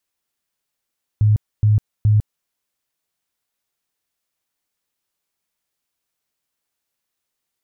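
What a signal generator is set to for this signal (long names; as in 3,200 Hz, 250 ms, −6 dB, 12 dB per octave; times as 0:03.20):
tone bursts 106 Hz, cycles 16, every 0.42 s, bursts 3, −10.5 dBFS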